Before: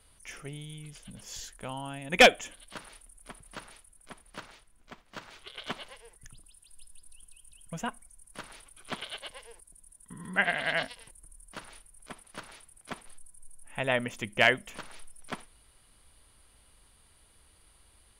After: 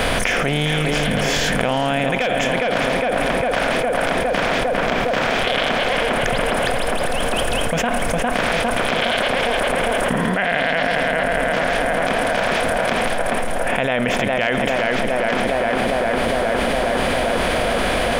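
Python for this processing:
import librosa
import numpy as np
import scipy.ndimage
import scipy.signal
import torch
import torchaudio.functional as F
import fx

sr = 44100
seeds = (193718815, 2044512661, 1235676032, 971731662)

y = fx.bin_compress(x, sr, power=0.6)
y = fx.peak_eq(y, sr, hz=10000.0, db=-10.0, octaves=2.4)
y = fx.echo_tape(y, sr, ms=407, feedback_pct=80, wet_db=-5.0, lp_hz=2300.0, drive_db=6.0, wow_cents=39)
y = fx.env_flatten(y, sr, amount_pct=100)
y = F.gain(torch.from_numpy(y), -5.5).numpy()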